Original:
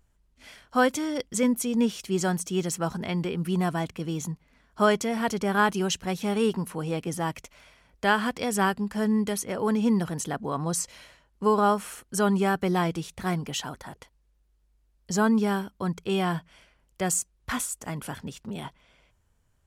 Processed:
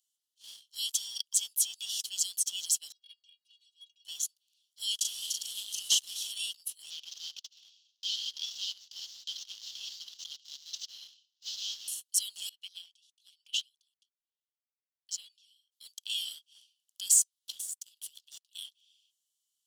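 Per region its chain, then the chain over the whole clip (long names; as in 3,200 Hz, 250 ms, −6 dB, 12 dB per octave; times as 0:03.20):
0:02.92–0:04.05: high-frequency loss of the air 180 metres + stiff-string resonator 120 Hz, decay 0.37 s, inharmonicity 0.03
0:04.95–0:06.32: variable-slope delta modulation 64 kbit/s + double-tracking delay 38 ms −3 dB + saturating transformer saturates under 800 Hz
0:06.90–0:11.88: variable-slope delta modulation 32 kbit/s + single-tap delay 77 ms −16.5 dB
0:12.49–0:15.72: high-shelf EQ 2,300 Hz +10.5 dB + transient designer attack +7 dB, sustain +1 dB + LFO wah 1.2 Hz 630–2,200 Hz, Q 5.4
0:17.50–0:18.55: downward compressor 8 to 1, threshold −35 dBFS + power curve on the samples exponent 1.4
whole clip: Butterworth high-pass 2,900 Hz 96 dB per octave; leveller curve on the samples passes 1; level +2 dB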